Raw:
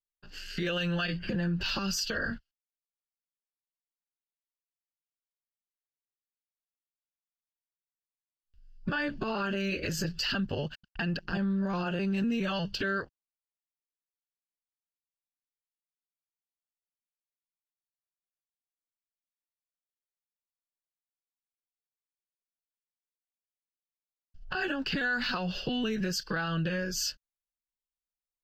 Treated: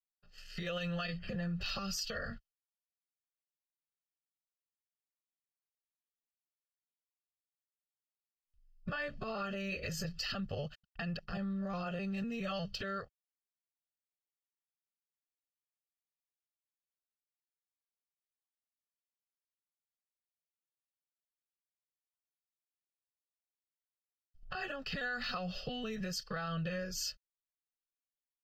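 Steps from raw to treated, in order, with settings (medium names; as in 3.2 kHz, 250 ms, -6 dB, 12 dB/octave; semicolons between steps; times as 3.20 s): comb 1.6 ms, depth 72%; gate -39 dBFS, range -8 dB; trim -8 dB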